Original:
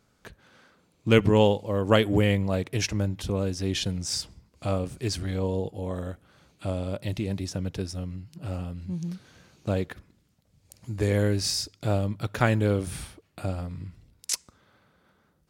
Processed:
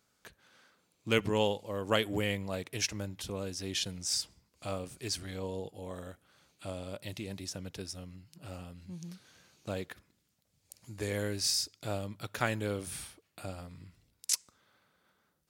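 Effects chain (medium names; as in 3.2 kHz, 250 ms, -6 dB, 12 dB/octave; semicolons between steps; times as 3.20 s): tilt EQ +2 dB/octave; trim -7 dB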